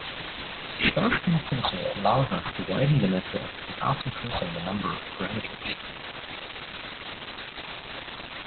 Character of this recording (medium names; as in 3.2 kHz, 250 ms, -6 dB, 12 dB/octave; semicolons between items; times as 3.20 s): aliases and images of a low sample rate 9.4 kHz, jitter 0%; phasing stages 4, 0.4 Hz, lowest notch 320–1100 Hz; a quantiser's noise floor 6-bit, dither triangular; Opus